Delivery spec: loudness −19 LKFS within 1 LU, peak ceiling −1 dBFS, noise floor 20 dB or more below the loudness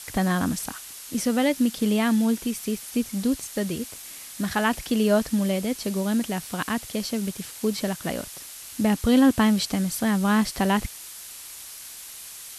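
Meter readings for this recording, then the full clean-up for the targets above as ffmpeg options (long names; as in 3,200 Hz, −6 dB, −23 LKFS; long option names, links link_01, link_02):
background noise floor −41 dBFS; target noise floor −45 dBFS; integrated loudness −24.5 LKFS; sample peak −8.0 dBFS; target loudness −19.0 LKFS
→ -af "afftdn=noise_reduction=6:noise_floor=-41"
-af "volume=5.5dB"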